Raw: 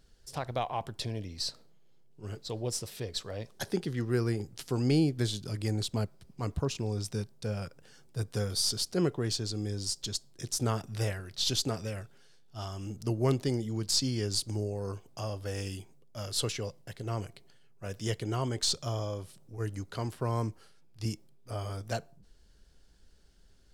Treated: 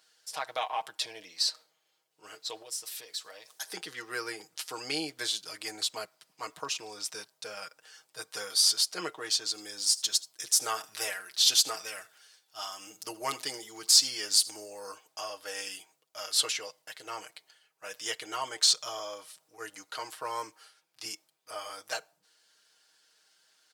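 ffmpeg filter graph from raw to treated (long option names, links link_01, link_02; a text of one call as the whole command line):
ffmpeg -i in.wav -filter_complex "[0:a]asettb=1/sr,asplit=3[link_01][link_02][link_03];[link_01]atrim=end=2.624[link_04];[link_02]atrim=start=2.62:end=3.73,asetpts=PTS-STARTPTS,afade=type=in:duration=0.004:curve=qsin,afade=type=out:start_time=1.106:duration=0.004:curve=qsin,highshelf=frequency=5800:gain=10,acompressor=threshold=-44dB:ratio=2.5:attack=3.2:release=140:knee=1:detection=peak[link_05];[link_03]atrim=start=3.726[link_06];[link_04][link_05]acrossfade=duration=0.004:curve1=hsin:curve2=qsin[link_07];[link_07][link_06]acrossfade=duration=0.004:curve1=qsin:curve2=hsin,asettb=1/sr,asplit=3[link_08][link_09][link_10];[link_08]atrim=end=9.504[link_11];[link_09]atrim=start=9.5:end=14.94,asetpts=PTS-STARTPTS,afade=type=in:duration=0.004:curve=qsin,afade=type=out:start_time=5.436:duration=0.004:curve=qsin,highshelf=frequency=8400:gain=7.5,aecho=1:1:79:0.106,atrim=end_sample=239904[link_12];[link_10]atrim=start=14.936[link_13];[link_11][link_12]acrossfade=duration=0.004:curve1=hsin:curve2=qsin[link_14];[link_14][link_13]acrossfade=duration=0.004:curve1=qsin:curve2=hsin,highpass=960,aecho=1:1:6.4:0.68,volume=4.5dB" out.wav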